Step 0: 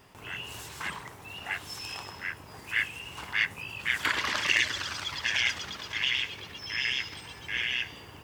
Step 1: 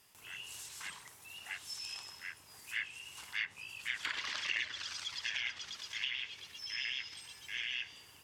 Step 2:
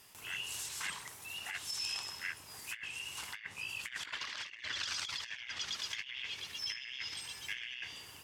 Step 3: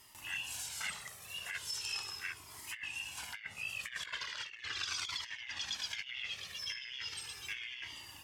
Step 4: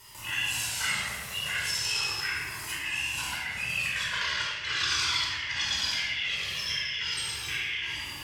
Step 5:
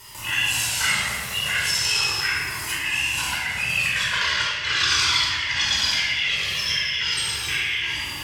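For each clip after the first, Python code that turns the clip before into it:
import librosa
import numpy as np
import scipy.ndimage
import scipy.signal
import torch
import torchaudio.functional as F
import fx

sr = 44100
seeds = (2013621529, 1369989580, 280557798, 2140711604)

y1 = F.preemphasis(torch.from_numpy(x), 0.9).numpy()
y1 = fx.env_lowpass_down(y1, sr, base_hz=2600.0, full_db=-32.0)
y1 = y1 * librosa.db_to_amplitude(1.0)
y2 = fx.over_compress(y1, sr, threshold_db=-43.0, ratio=-0.5)
y2 = y2 * librosa.db_to_amplitude(3.0)
y3 = fx.comb_cascade(y2, sr, direction='falling', hz=0.38)
y3 = y3 * librosa.db_to_amplitude(4.0)
y4 = fx.room_shoebox(y3, sr, seeds[0], volume_m3=1700.0, walls='mixed', distance_m=4.8)
y4 = y4 * librosa.db_to_amplitude(4.0)
y5 = y4 + 10.0 ** (-14.5 / 20.0) * np.pad(y4, (int(254 * sr / 1000.0), 0))[:len(y4)]
y5 = y5 * librosa.db_to_amplitude(7.5)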